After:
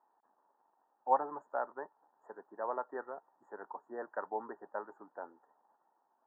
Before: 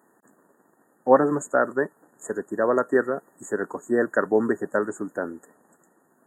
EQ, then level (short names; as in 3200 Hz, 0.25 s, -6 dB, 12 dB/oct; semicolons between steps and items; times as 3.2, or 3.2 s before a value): band-pass 870 Hz, Q 5.8; air absorption 140 m; -2.0 dB